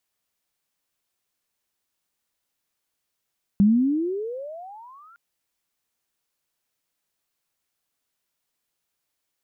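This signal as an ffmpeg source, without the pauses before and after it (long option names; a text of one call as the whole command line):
ffmpeg -f lavfi -i "aevalsrc='pow(10,(-12-36*t/1.56)/20)*sin(2*PI*194*1.56/(34.5*log(2)/12)*(exp(34.5*log(2)/12*t/1.56)-1))':duration=1.56:sample_rate=44100" out.wav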